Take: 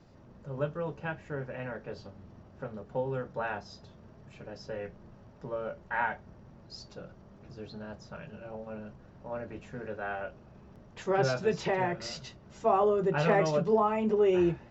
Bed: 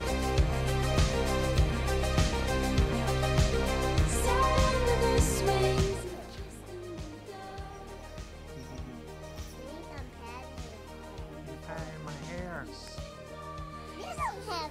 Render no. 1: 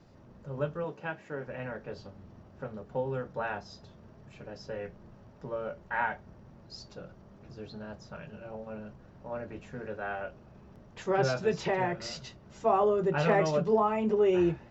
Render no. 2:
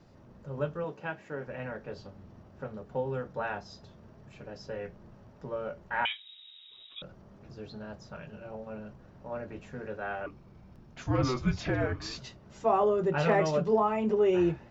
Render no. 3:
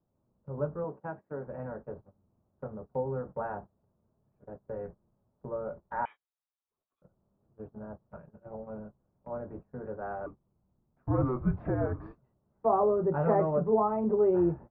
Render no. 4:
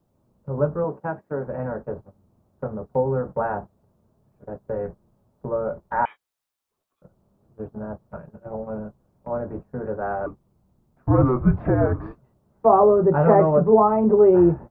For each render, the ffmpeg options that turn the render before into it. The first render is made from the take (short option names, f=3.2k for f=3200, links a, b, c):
-filter_complex "[0:a]asettb=1/sr,asplit=3[a][b][c];[a]atrim=end=0.844[d];[b]atrim=start=0.84:end=1.47,asetpts=PTS-STARTPTS,afade=t=in:d=0.004:c=qsin,afade=t=out:st=0.626:d=0.004:c=qsin,highpass=190[e];[c]atrim=start=1.466[f];[d][e]acrossfade=d=0.004:c1=hsin:c2=qsin[g];[g][f]acrossfade=d=0.004:c1=qsin:c2=hsin"
-filter_complex "[0:a]asettb=1/sr,asplit=3[a][b][c];[a]atrim=end=6.054[d];[b]atrim=start=6.05:end=7.02,asetpts=PTS-STARTPTS,afade=t=in:d=0.004:c=qsin,afade=t=out:st=0.966:d=0.004:c=qsin,lowpass=f=3.3k:t=q:w=0.5098,lowpass=f=3.3k:t=q:w=0.6013,lowpass=f=3.3k:t=q:w=0.9,lowpass=f=3.3k:t=q:w=2.563,afreqshift=-3900[e];[c]atrim=start=7.016[f];[d][e]acrossfade=d=0.004:c1=hsin:c2=qsin[g];[g][f]acrossfade=d=0.004:c1=qsin:c2=hsin,asettb=1/sr,asplit=3[h][i][j];[h]atrim=end=10.264[k];[i]atrim=start=10.26:end=12.18,asetpts=PTS-STARTPTS,afade=t=in:d=0.004:c=qsin,afade=t=out:st=1.916:d=0.004:c=qsin,afreqshift=-260[l];[j]atrim=start=12.176[m];[k][l]acrossfade=d=0.004:c1=hsin:c2=qsin[n];[n][m]acrossfade=d=0.004:c1=qsin:c2=hsin"
-af "lowpass=f=1.2k:w=0.5412,lowpass=f=1.2k:w=1.3066,agate=range=-21dB:threshold=-43dB:ratio=16:detection=peak"
-af "volume=10.5dB"